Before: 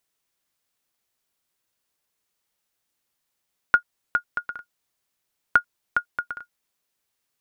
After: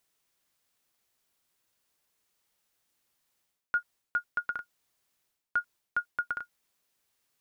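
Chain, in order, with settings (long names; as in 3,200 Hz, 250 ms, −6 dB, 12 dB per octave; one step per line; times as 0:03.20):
reversed playback
downward compressor 10 to 1, threshold −29 dBFS, peak gain reduction 17.5 dB
reversed playback
level +1.5 dB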